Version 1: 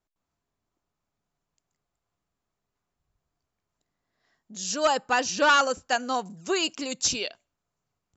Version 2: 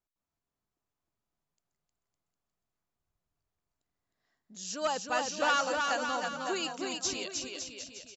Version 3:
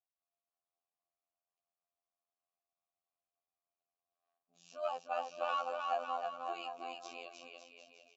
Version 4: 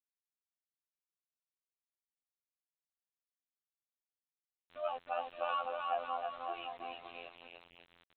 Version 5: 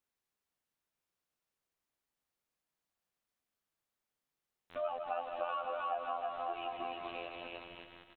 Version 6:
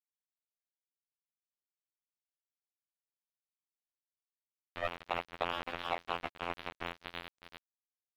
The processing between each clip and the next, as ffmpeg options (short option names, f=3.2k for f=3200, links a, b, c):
-af "aecho=1:1:310|558|756.4|915.1|1042:0.631|0.398|0.251|0.158|0.1,volume=-8.5dB"
-filter_complex "[0:a]tremolo=f=67:d=0.462,asplit=3[a][b][c];[a]bandpass=f=730:t=q:w=8,volume=0dB[d];[b]bandpass=f=1.09k:t=q:w=8,volume=-6dB[e];[c]bandpass=f=2.44k:t=q:w=8,volume=-9dB[f];[d][e][f]amix=inputs=3:normalize=0,afftfilt=real='hypot(re,im)*cos(PI*b)':imag='0':win_size=2048:overlap=0.75,volume=8dB"
-af "equalizer=f=140:w=2.4:g=-15,aresample=8000,aeval=exprs='val(0)*gte(abs(val(0)),0.00251)':c=same,aresample=44100"
-af "aecho=1:1:154|308|462|616|770|924:0.355|0.185|0.0959|0.0499|0.0259|0.0135,acompressor=threshold=-48dB:ratio=3,highshelf=f=2.7k:g=-8.5,volume=11dB"
-af "aresample=8000,acrusher=bits=4:mix=0:aa=0.5,aresample=44100,aeval=exprs='sgn(val(0))*max(abs(val(0))-0.00158,0)':c=same,volume=4dB"